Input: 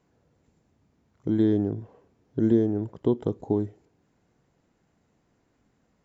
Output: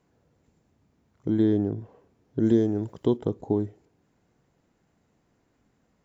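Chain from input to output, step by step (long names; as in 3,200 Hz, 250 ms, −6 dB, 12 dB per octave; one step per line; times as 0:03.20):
0:02.45–0:03.16: high-shelf EQ 3,400 Hz → 2,900 Hz +12 dB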